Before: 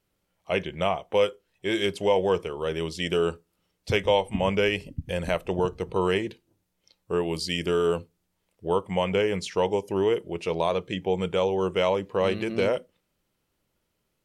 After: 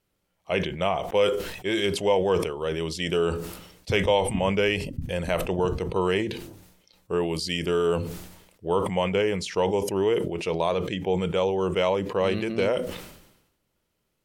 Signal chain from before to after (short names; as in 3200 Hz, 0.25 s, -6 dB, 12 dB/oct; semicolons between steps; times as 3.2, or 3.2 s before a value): sustainer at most 62 dB/s